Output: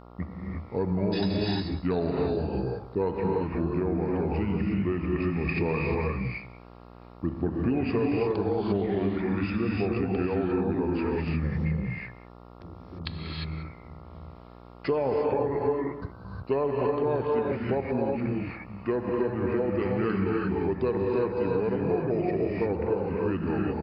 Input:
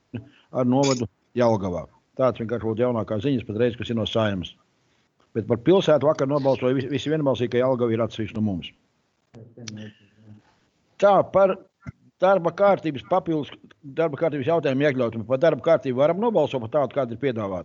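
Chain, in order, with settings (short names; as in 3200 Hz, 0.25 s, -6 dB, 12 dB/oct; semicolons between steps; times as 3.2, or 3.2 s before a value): echo 0.139 s -19.5 dB; speed mistake 45 rpm record played at 33 rpm; non-linear reverb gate 0.38 s rising, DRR -2 dB; compressor 4:1, threshold -23 dBFS, peak gain reduction 11.5 dB; buzz 60 Hz, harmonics 23, -47 dBFS -3 dB/oct; gain -1.5 dB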